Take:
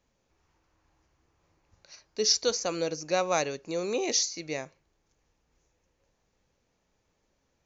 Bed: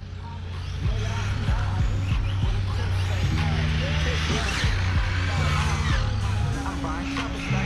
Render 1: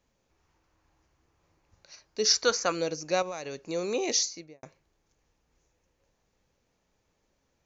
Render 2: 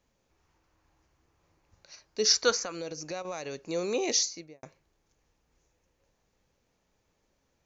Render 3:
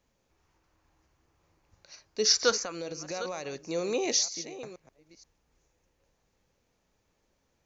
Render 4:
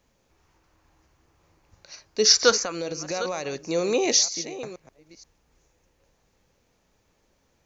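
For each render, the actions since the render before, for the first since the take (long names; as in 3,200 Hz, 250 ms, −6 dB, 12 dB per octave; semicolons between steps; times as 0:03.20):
0:02.25–0:02.72: parametric band 1,400 Hz +11 dB 1.2 octaves; 0:03.22–0:03.63: downward compressor 12 to 1, threshold −32 dBFS; 0:04.23–0:04.63: fade out and dull
0:02.64–0:03.25: downward compressor 4 to 1, threshold −34 dBFS
delay that plays each chunk backwards 476 ms, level −13 dB
level +6.5 dB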